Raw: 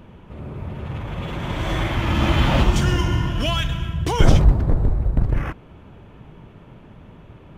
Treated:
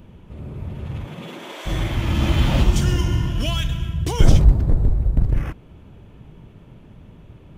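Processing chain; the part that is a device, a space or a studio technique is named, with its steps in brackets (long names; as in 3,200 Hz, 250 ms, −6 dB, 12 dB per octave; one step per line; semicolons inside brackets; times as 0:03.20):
smiley-face EQ (low-shelf EQ 130 Hz +3.5 dB; parametric band 1,200 Hz −5.5 dB 2.2 octaves; high-shelf EQ 5,500 Hz +5.5 dB)
0:01.04–0:01.65: high-pass filter 110 Hz → 470 Hz 24 dB per octave
level −1.5 dB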